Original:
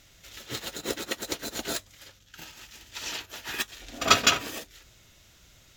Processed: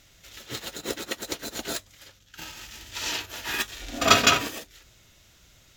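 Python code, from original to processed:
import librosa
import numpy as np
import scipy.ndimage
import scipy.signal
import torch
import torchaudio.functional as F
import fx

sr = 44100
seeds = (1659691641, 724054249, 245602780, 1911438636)

y = fx.hpss(x, sr, part='harmonic', gain_db=9, at=(2.37, 4.47), fade=0.02)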